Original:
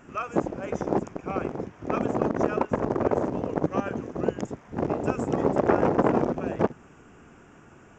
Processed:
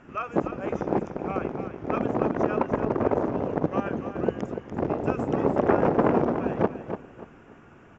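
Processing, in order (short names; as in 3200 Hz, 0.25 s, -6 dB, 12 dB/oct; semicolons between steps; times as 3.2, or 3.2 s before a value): LPF 4000 Hz 12 dB/oct; on a send: feedback echo 0.291 s, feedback 28%, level -9 dB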